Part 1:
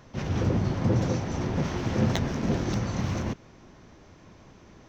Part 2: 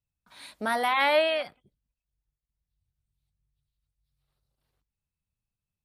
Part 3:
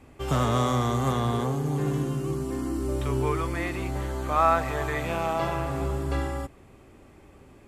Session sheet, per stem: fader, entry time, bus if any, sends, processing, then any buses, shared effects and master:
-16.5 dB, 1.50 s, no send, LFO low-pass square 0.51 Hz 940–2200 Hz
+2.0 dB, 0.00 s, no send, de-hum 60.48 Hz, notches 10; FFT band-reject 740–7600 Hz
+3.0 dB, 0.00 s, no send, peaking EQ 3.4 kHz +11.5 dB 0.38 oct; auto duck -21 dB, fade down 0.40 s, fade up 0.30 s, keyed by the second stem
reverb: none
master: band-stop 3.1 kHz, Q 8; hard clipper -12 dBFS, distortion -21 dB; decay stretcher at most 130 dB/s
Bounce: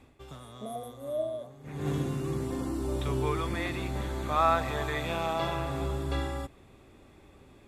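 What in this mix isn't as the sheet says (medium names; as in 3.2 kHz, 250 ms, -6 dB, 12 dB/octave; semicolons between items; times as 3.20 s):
stem 2 +2.0 dB -> -7.0 dB; stem 3 +3.0 dB -> -3.5 dB; master: missing decay stretcher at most 130 dB/s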